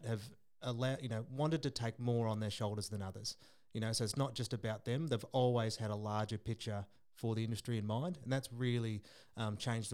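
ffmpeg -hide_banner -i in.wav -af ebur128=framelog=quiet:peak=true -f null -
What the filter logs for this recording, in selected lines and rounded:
Integrated loudness:
  I:         -39.5 LUFS
  Threshold: -49.7 LUFS
Loudness range:
  LRA:         2.2 LU
  Threshold: -59.5 LUFS
  LRA low:   -40.7 LUFS
  LRA high:  -38.5 LUFS
True peak:
  Peak:      -21.2 dBFS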